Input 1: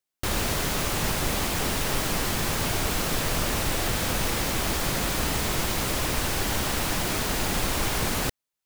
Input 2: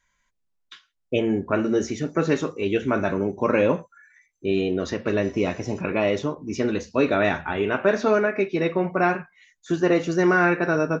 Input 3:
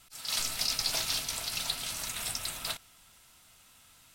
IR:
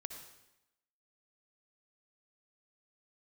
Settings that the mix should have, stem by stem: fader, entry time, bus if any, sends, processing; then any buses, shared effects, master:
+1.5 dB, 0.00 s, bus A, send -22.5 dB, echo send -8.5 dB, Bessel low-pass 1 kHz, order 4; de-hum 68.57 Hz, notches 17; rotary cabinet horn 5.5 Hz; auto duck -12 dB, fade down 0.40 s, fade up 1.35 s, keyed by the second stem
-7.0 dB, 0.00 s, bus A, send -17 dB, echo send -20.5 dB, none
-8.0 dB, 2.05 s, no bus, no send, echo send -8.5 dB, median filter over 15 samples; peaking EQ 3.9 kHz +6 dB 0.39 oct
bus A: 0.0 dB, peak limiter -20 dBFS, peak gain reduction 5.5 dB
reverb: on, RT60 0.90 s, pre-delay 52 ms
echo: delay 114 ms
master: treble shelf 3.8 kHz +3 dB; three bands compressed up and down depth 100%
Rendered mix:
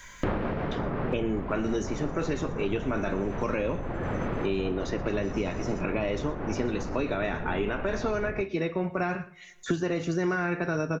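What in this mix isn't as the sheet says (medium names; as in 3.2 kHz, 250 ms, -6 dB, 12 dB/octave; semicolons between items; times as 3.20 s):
stem 3: muted; reverb return -6.5 dB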